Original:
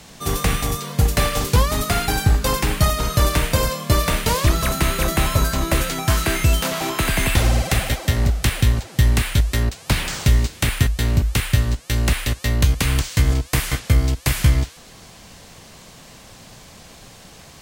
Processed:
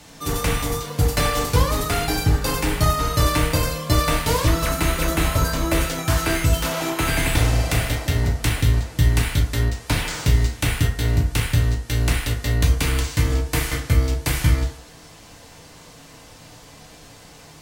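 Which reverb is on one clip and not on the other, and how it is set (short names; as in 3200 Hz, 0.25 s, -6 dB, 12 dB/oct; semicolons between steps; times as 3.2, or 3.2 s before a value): FDN reverb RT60 0.6 s, low-frequency decay 0.7×, high-frequency decay 0.5×, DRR -0.5 dB; gain -4 dB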